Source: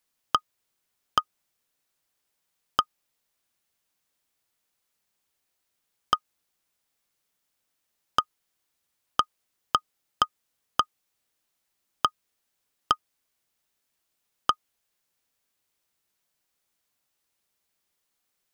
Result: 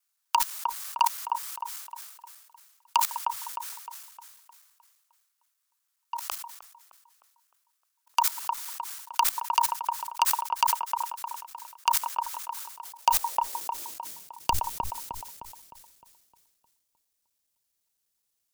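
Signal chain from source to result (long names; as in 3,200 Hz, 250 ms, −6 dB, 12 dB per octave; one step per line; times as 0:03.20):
slices reordered back to front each 84 ms, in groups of 3
high-pass filter 140 Hz 24 dB per octave
bass and treble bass −7 dB, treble +10 dB
mains-hum notches 60/120/180/240/300 Hz
output level in coarse steps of 22 dB
high-pass filter sweep 1,500 Hz → 280 Hz, 0:12.53–0:14.99
frequency shifter −300 Hz
delay with a low-pass on its return 307 ms, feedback 46%, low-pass 1,500 Hz, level −14.5 dB
boost into a limiter +17.5 dB
level that may fall only so fast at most 59 dB per second
level −8 dB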